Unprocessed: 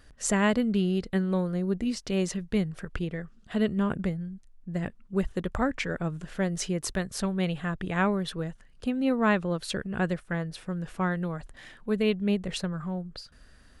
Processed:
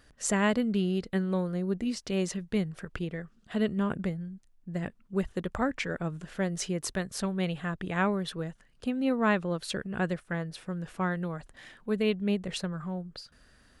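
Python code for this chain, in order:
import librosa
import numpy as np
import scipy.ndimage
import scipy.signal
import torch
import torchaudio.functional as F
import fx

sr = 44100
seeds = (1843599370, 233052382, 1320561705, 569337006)

y = fx.low_shelf(x, sr, hz=66.0, db=-8.5)
y = F.gain(torch.from_numpy(y), -1.5).numpy()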